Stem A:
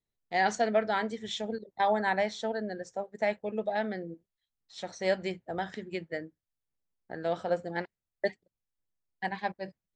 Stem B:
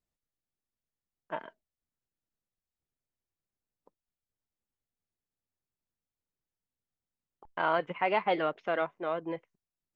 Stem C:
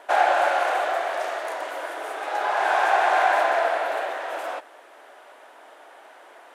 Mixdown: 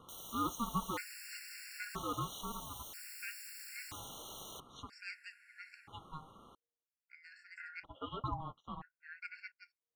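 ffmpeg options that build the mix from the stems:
-filter_complex "[0:a]highpass=530,volume=-5dB[a];[1:a]acrossover=split=740[b][c];[b]aeval=exprs='val(0)*(1-1/2+1/2*cos(2*PI*1.8*n/s))':c=same[d];[c]aeval=exprs='val(0)*(1-1/2-1/2*cos(2*PI*1.8*n/s))':c=same[e];[d][e]amix=inputs=2:normalize=0,flanger=delay=6.1:depth=7.4:regen=-37:speed=1.2:shape=sinusoidal,volume=-1.5dB[f];[2:a]aeval=exprs='(mod(42.2*val(0)+1,2)-1)/42.2':c=same,volume=-6.5dB[g];[a][f][g]amix=inputs=3:normalize=0,aeval=exprs='val(0)*sin(2*PI*470*n/s)':c=same,afftfilt=real='re*gt(sin(2*PI*0.51*pts/sr)*(1-2*mod(floor(b*sr/1024/1400),2)),0)':imag='im*gt(sin(2*PI*0.51*pts/sr)*(1-2*mod(floor(b*sr/1024/1400),2)),0)':win_size=1024:overlap=0.75"

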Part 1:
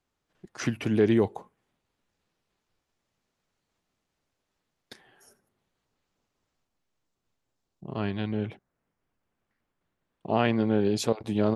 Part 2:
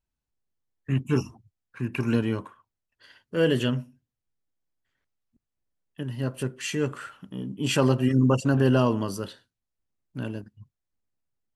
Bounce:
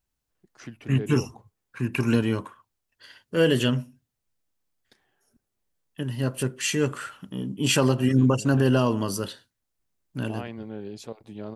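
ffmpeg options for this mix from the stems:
-filter_complex "[0:a]volume=-12.5dB[a];[1:a]highshelf=f=4k:g=6.5,volume=2.5dB[b];[a][b]amix=inputs=2:normalize=0,alimiter=limit=-10dB:level=0:latency=1:release=328"

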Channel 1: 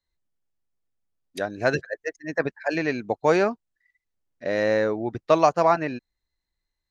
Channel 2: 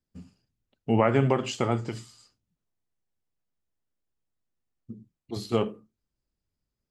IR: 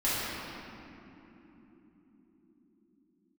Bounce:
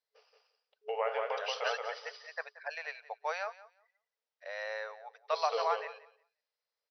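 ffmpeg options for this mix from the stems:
-filter_complex "[0:a]highpass=f=680:w=0.5412,highpass=f=680:w=1.3066,volume=-10.5dB,asplit=2[a][b];[b]volume=-18dB[c];[1:a]alimiter=limit=-18.5dB:level=0:latency=1:release=235,volume=-1dB,asplit=2[d][e];[e]volume=-3.5dB[f];[c][f]amix=inputs=2:normalize=0,aecho=0:1:178|356|534:1|0.17|0.0289[g];[a][d][g]amix=inputs=3:normalize=0,afftfilt=real='re*between(b*sr/4096,420,6000)':imag='im*between(b*sr/4096,420,6000)':win_size=4096:overlap=0.75"

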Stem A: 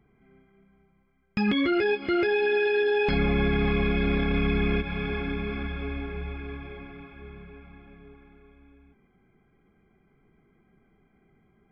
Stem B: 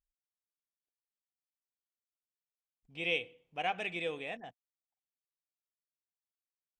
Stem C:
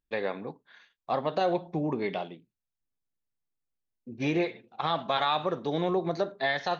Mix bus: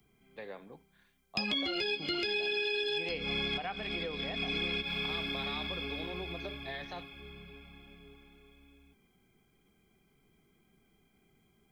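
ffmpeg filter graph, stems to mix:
-filter_complex "[0:a]aexciter=amount=8.3:drive=4:freq=2.7k,volume=-6dB[a];[1:a]lowpass=f=1.3k:t=q:w=1.7,volume=1.5dB,asplit=2[b][c];[2:a]adelay=250,volume=-13.5dB[d];[c]apad=whole_len=516416[e];[a][e]sidechaincompress=threshold=-46dB:ratio=8:attack=36:release=141[f];[f][b][d]amix=inputs=3:normalize=0,acrossover=split=83|360|1700[g][h][i][j];[g]acompressor=threshold=-55dB:ratio=4[k];[h]acompressor=threshold=-42dB:ratio=4[l];[i]acompressor=threshold=-41dB:ratio=4[m];[j]acompressor=threshold=-33dB:ratio=4[n];[k][l][m][n]amix=inputs=4:normalize=0"

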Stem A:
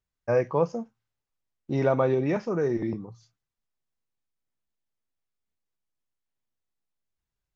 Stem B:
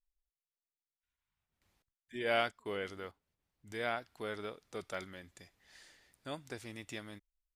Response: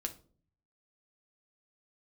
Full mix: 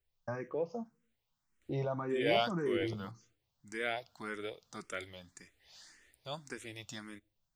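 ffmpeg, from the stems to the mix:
-filter_complex "[0:a]acompressor=threshold=-46dB:ratio=1.5,alimiter=level_in=2dB:limit=-24dB:level=0:latency=1:release=133,volume=-2dB,volume=2dB,asplit=2[a][b];[b]volume=-16dB[c];[1:a]highshelf=f=4.5k:g=10,acontrast=29,volume=-4dB,asplit=2[d][e];[e]volume=-17.5dB[f];[2:a]atrim=start_sample=2205[g];[c][f]amix=inputs=2:normalize=0[h];[h][g]afir=irnorm=-1:irlink=0[i];[a][d][i]amix=inputs=3:normalize=0,equalizer=f=12k:t=o:w=0.66:g=-13,asplit=2[j][k];[k]afreqshift=1.8[l];[j][l]amix=inputs=2:normalize=1"

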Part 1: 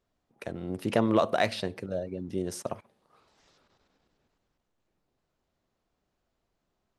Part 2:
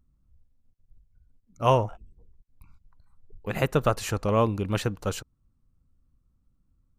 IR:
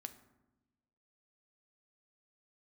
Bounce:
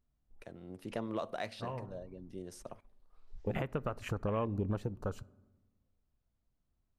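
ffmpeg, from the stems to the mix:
-filter_complex "[0:a]volume=-14dB,asplit=3[a][b][c];[b]volume=-14.5dB[d];[1:a]afwtdn=0.02,acompressor=threshold=-30dB:ratio=12,volume=1dB,asplit=2[e][f];[f]volume=-6.5dB[g];[c]apad=whole_len=308237[h];[e][h]sidechaincompress=threshold=-59dB:ratio=8:attack=16:release=715[i];[2:a]atrim=start_sample=2205[j];[d][g]amix=inputs=2:normalize=0[k];[k][j]afir=irnorm=-1:irlink=0[l];[a][i][l]amix=inputs=3:normalize=0,alimiter=limit=-23.5dB:level=0:latency=1:release=395"

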